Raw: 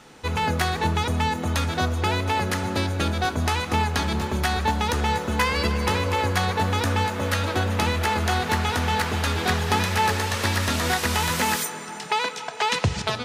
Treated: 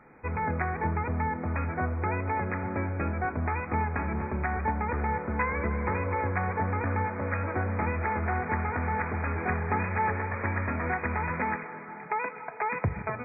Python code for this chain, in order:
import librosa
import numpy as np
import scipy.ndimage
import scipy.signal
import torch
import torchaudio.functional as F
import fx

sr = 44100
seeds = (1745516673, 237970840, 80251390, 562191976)

y = fx.brickwall_lowpass(x, sr, high_hz=2500.0)
y = y * 10.0 ** (-5.5 / 20.0)